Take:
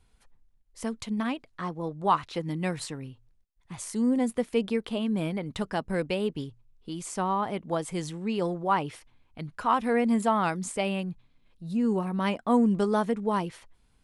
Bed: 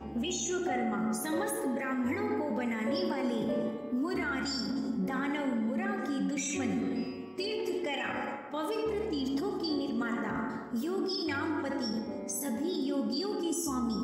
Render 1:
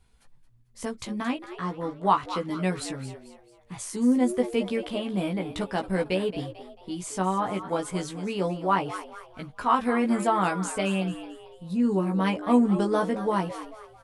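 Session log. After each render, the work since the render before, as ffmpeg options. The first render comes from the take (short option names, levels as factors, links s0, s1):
-filter_complex "[0:a]asplit=2[s0][s1];[s1]adelay=16,volume=0.668[s2];[s0][s2]amix=inputs=2:normalize=0,asplit=5[s3][s4][s5][s6][s7];[s4]adelay=222,afreqshift=110,volume=0.224[s8];[s5]adelay=444,afreqshift=220,volume=0.0871[s9];[s6]adelay=666,afreqshift=330,volume=0.0339[s10];[s7]adelay=888,afreqshift=440,volume=0.0133[s11];[s3][s8][s9][s10][s11]amix=inputs=5:normalize=0"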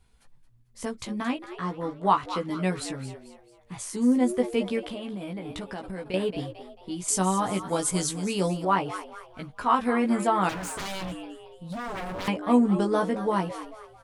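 -filter_complex "[0:a]asettb=1/sr,asplit=3[s0][s1][s2];[s0]atrim=end=4.794[s3];[s1]atrim=start=4.79:end=6.14,asetpts=PTS-STARTPTS,afade=t=in:d=0.004:c=qsin,afade=t=out:st=1.346:d=0.004:c=qsin,acompressor=threshold=0.0282:ratio=10:attack=3.2:release=140:knee=1:detection=peak[s4];[s2]atrim=start=6.136[s5];[s3][s4]acrossfade=d=0.004:c1=hsin:c2=qsin[s6];[s6][s5]acrossfade=d=0.004:c1=qsin:c2=hsin,asettb=1/sr,asplit=3[s7][s8][s9];[s7]atrim=end=7.084[s10];[s8]atrim=start=7.08:end=8.65,asetpts=PTS-STARTPTS,afade=t=in:d=0.004:c=qsin,afade=t=out:st=1.566:d=0.004:c=qsin,bass=f=250:g=4,treble=f=4000:g=14[s11];[s9]atrim=start=8.646[s12];[s10][s11]acrossfade=d=0.004:c1=hsin:c2=qsin[s13];[s13][s12]acrossfade=d=0.004:c1=qsin:c2=hsin,asettb=1/sr,asplit=3[s14][s15][s16];[s14]atrim=end=10.494[s17];[s15]atrim=start=10.49:end=12.28,asetpts=PTS-STARTPTS,afade=t=in:d=0.004:c=qsin,afade=t=out:st=1.786:d=0.004:c=qsin,aeval=exprs='0.0355*(abs(mod(val(0)/0.0355+3,4)-2)-1)':c=same[s18];[s16]atrim=start=12.276[s19];[s17][s18]acrossfade=d=0.004:c1=hsin:c2=qsin[s20];[s20][s19]acrossfade=d=0.004:c1=qsin:c2=hsin"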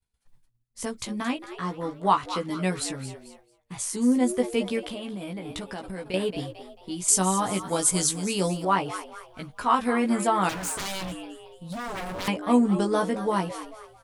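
-af "agate=range=0.0224:threshold=0.00398:ratio=3:detection=peak,highshelf=f=4100:g=7.5"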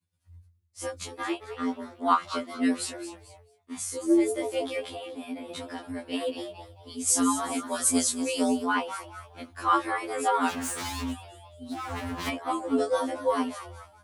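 -af "afreqshift=78,afftfilt=real='re*2*eq(mod(b,4),0)':imag='im*2*eq(mod(b,4),0)':win_size=2048:overlap=0.75"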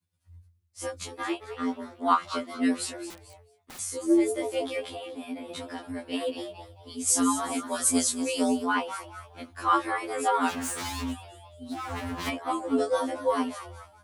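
-filter_complex "[0:a]asettb=1/sr,asplit=3[s0][s1][s2];[s0]atrim=end=3.104[s3];[s1]atrim=start=3.1:end=3.79,asetpts=PTS-STARTPTS,afade=t=in:d=0.004:c=qsin,afade=t=out:st=0.686:d=0.004:c=qsin,aeval=exprs='(mod(94.4*val(0)+1,2)-1)/94.4':c=same[s4];[s2]atrim=start=3.786[s5];[s3][s4]acrossfade=d=0.004:c1=hsin:c2=qsin[s6];[s6][s5]acrossfade=d=0.004:c1=qsin:c2=hsin"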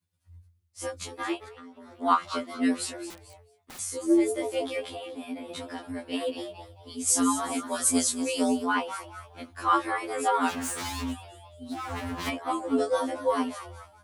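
-filter_complex "[0:a]asettb=1/sr,asplit=3[s0][s1][s2];[s0]atrim=end=1.484[s3];[s1]atrim=start=1.48:end=2,asetpts=PTS-STARTPTS,afade=t=in:d=0.004:c=qsin,afade=t=out:st=0.516:d=0.004:c=qsin,acompressor=threshold=0.00708:ratio=12:attack=3.2:release=140:knee=1:detection=peak[s4];[s2]atrim=start=1.996[s5];[s3][s4]acrossfade=d=0.004:c1=hsin:c2=qsin[s6];[s6][s5]acrossfade=d=0.004:c1=qsin:c2=hsin"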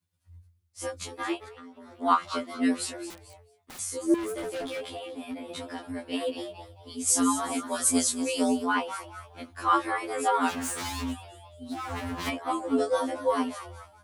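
-filter_complex "[0:a]asettb=1/sr,asplit=3[s0][s1][s2];[s0]atrim=end=4.144[s3];[s1]atrim=start=4.14:end=5.51,asetpts=PTS-STARTPTS,afade=t=in:d=0.004:c=qsin,afade=t=out:st=1.366:d=0.004:c=qsin,asoftclip=type=hard:threshold=0.0282[s4];[s2]atrim=start=5.506[s5];[s3][s4]acrossfade=d=0.004:c1=hsin:c2=qsin[s6];[s6][s5]acrossfade=d=0.004:c1=qsin:c2=hsin"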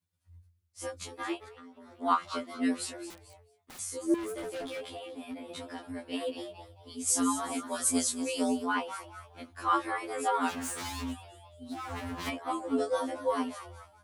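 -af "volume=0.631"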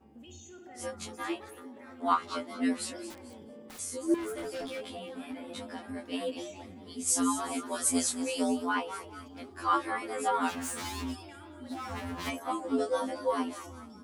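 -filter_complex "[1:a]volume=0.126[s0];[0:a][s0]amix=inputs=2:normalize=0"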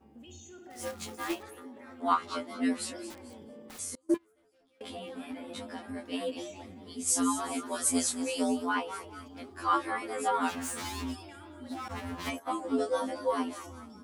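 -filter_complex "[0:a]asettb=1/sr,asplit=3[s0][s1][s2];[s0]atrim=end=0.704[s3];[s1]atrim=start=0.7:end=1.43,asetpts=PTS-STARTPTS,afade=t=in:d=0.004:c=qsin,afade=t=out:st=0.726:d=0.004:c=qsin,acrusher=bits=2:mode=log:mix=0:aa=0.000001[s4];[s2]atrim=start=1.426[s5];[s3][s4]acrossfade=d=0.004:c1=hsin:c2=qsin[s6];[s6][s5]acrossfade=d=0.004:c1=qsin:c2=hsin,asettb=1/sr,asplit=3[s7][s8][s9];[s7]atrim=end=3.954[s10];[s8]atrim=start=3.95:end=4.81,asetpts=PTS-STARTPTS,afade=t=in:d=0.004:c=qsin,afade=t=out:st=0.856:d=0.004:c=qsin,agate=range=0.0282:threshold=0.0355:ratio=16:release=100:detection=peak[s11];[s9]atrim=start=4.806[s12];[s10][s11]acrossfade=d=0.004:c1=hsin:c2=qsin[s13];[s13][s12]acrossfade=d=0.004:c1=qsin:c2=hsin,asettb=1/sr,asplit=3[s14][s15][s16];[s14]atrim=end=11.884[s17];[s15]atrim=start=11.88:end=12.53,asetpts=PTS-STARTPTS,afade=t=in:d=0.004:c=qsin,afade=t=out:st=0.646:d=0.004:c=qsin,agate=range=0.0224:threshold=0.0126:ratio=3:release=100:detection=peak[s18];[s16]atrim=start=12.526[s19];[s17][s18]acrossfade=d=0.004:c1=hsin:c2=qsin[s20];[s20][s19]acrossfade=d=0.004:c1=qsin:c2=hsin"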